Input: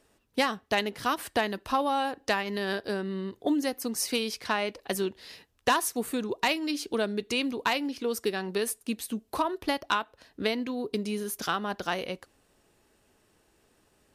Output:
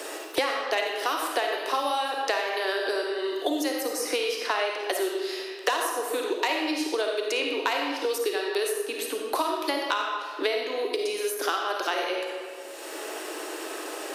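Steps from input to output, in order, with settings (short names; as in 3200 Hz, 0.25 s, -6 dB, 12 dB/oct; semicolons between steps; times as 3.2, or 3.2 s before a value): steep high-pass 300 Hz 72 dB/oct; reverb RT60 1.0 s, pre-delay 10 ms, DRR 0.5 dB; three-band squash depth 100%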